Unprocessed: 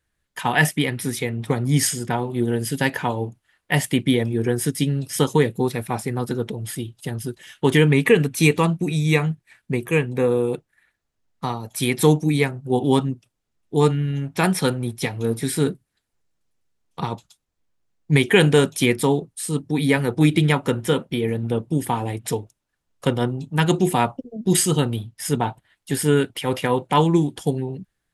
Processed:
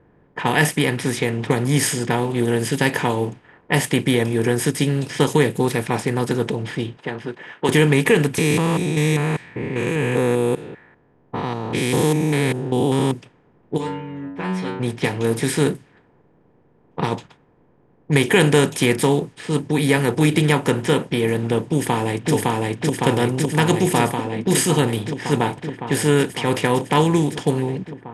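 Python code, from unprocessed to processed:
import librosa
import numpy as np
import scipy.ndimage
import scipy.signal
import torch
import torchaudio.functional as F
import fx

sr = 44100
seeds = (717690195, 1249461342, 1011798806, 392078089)

y = fx.weighting(x, sr, curve='A', at=(6.97, 7.69))
y = fx.spec_steps(y, sr, hold_ms=200, at=(8.38, 13.12))
y = fx.stiff_resonator(y, sr, f0_hz=92.0, decay_s=0.66, stiffness=0.002, at=(13.76, 14.79), fade=0.02)
y = fx.echo_throw(y, sr, start_s=21.69, length_s=0.64, ms=560, feedback_pct=75, wet_db=-0.5)
y = fx.bin_compress(y, sr, power=0.6)
y = fx.env_lowpass(y, sr, base_hz=810.0, full_db=-13.0)
y = F.gain(torch.from_numpy(y), -2.5).numpy()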